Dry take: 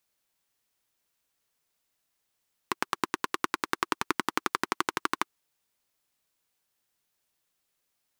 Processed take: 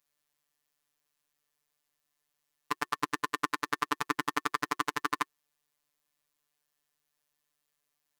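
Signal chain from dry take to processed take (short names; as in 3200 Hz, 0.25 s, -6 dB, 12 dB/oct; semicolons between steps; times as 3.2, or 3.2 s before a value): robotiser 147 Hz; notch 360 Hz, Q 12; small resonant body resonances 1100/1800 Hz, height 9 dB; gain -1 dB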